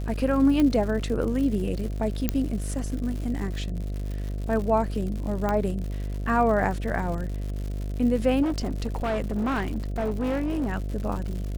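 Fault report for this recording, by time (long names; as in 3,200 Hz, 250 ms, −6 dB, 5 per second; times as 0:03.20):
mains buzz 50 Hz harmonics 14 −30 dBFS
surface crackle 150 per second −33 dBFS
0:00.60: click −13 dBFS
0:02.29: click −9 dBFS
0:05.49: click −14 dBFS
0:08.42–0:10.69: clipping −22.5 dBFS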